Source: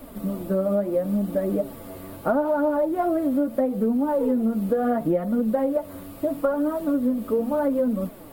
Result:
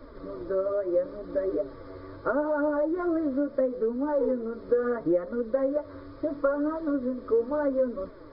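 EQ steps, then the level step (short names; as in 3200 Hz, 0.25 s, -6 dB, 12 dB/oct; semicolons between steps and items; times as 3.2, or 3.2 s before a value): brick-wall FIR low-pass 5300 Hz; fixed phaser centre 750 Hz, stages 6; 0.0 dB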